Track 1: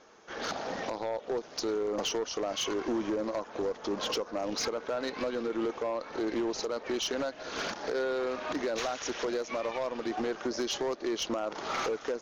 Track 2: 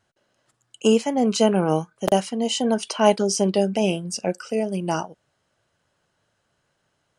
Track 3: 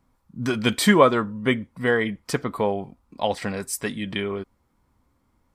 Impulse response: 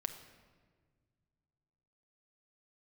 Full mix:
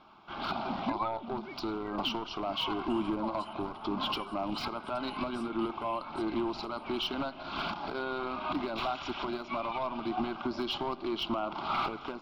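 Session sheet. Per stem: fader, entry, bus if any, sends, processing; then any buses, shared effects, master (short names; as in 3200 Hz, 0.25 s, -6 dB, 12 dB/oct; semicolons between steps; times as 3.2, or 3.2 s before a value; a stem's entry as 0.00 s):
+2.5 dB, 0.00 s, send -5.5 dB, dry
-15.5 dB, 2.05 s, no send, HPF 1400 Hz
-9.0 dB, 0.00 s, no send, sine-wave speech; photocell phaser 0.77 Hz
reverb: on, RT60 1.6 s, pre-delay 6 ms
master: high shelf 3000 Hz -8.5 dB; fixed phaser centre 1800 Hz, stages 6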